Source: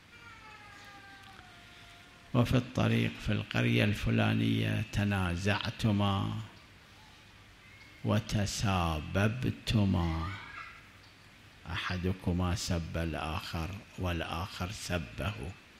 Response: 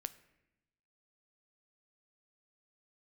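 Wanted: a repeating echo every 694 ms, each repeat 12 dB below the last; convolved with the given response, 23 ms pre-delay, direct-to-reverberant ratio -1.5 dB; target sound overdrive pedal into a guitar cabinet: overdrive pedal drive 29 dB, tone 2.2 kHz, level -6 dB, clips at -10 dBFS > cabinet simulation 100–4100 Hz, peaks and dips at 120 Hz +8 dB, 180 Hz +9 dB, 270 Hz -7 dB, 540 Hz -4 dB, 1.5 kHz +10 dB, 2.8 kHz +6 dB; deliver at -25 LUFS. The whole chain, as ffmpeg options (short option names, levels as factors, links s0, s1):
-filter_complex "[0:a]aecho=1:1:694|1388|2082:0.251|0.0628|0.0157,asplit=2[s0][s1];[1:a]atrim=start_sample=2205,adelay=23[s2];[s1][s2]afir=irnorm=-1:irlink=0,volume=1.58[s3];[s0][s3]amix=inputs=2:normalize=0,asplit=2[s4][s5];[s5]highpass=f=720:p=1,volume=28.2,asoftclip=type=tanh:threshold=0.316[s6];[s4][s6]amix=inputs=2:normalize=0,lowpass=f=2200:p=1,volume=0.501,highpass=100,equalizer=f=120:t=q:w=4:g=8,equalizer=f=180:t=q:w=4:g=9,equalizer=f=270:t=q:w=4:g=-7,equalizer=f=540:t=q:w=4:g=-4,equalizer=f=1500:t=q:w=4:g=10,equalizer=f=2800:t=q:w=4:g=6,lowpass=f=4100:w=0.5412,lowpass=f=4100:w=1.3066,volume=0.422"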